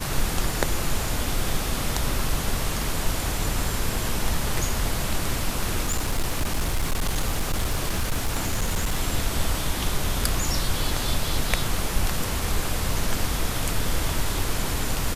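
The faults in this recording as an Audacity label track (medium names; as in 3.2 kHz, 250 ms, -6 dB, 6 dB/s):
5.850000	8.990000	clipped -19 dBFS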